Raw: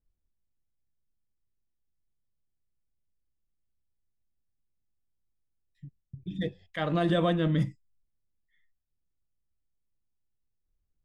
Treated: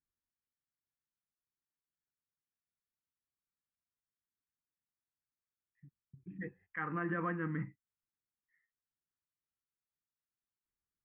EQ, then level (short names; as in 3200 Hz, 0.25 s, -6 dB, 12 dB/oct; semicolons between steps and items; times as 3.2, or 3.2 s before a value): HPF 590 Hz 6 dB/oct; LPF 2000 Hz 24 dB/oct; fixed phaser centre 1500 Hz, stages 4; 0.0 dB